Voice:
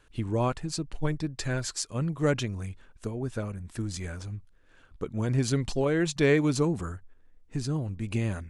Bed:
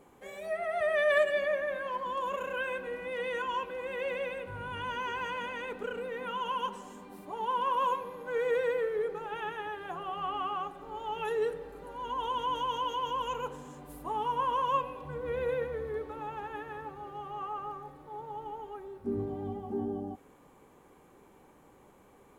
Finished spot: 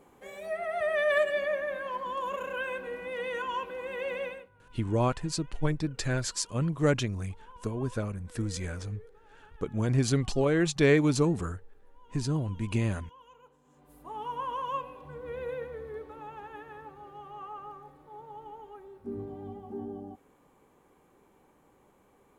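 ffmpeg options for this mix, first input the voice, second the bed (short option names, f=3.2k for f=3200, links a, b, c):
-filter_complex "[0:a]adelay=4600,volume=0.5dB[a];[1:a]volume=17dB,afade=t=out:st=4.25:d=0.24:silence=0.0841395,afade=t=in:st=13.61:d=0.69:silence=0.141254[b];[a][b]amix=inputs=2:normalize=0"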